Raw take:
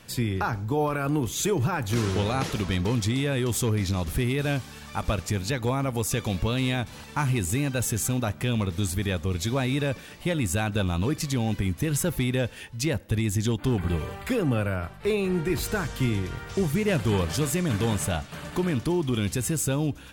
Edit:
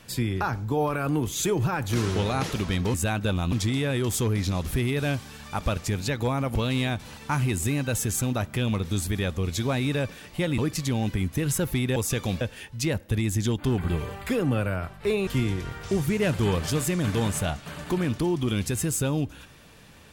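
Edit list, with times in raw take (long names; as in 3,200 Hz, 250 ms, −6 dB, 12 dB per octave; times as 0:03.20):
0:05.97–0:06.42: move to 0:12.41
0:10.45–0:11.03: move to 0:02.94
0:15.27–0:15.93: remove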